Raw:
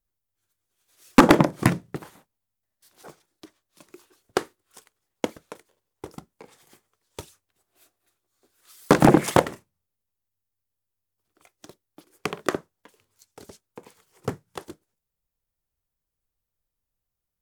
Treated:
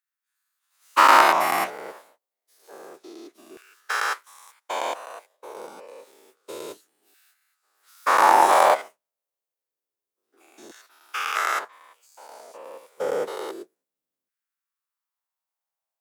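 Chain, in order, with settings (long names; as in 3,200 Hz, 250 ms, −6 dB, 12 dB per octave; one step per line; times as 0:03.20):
every bin's largest magnitude spread in time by 240 ms
wrong playback speed 44.1 kHz file played as 48 kHz
auto-filter high-pass saw down 0.28 Hz 270–1,600 Hz
level −8 dB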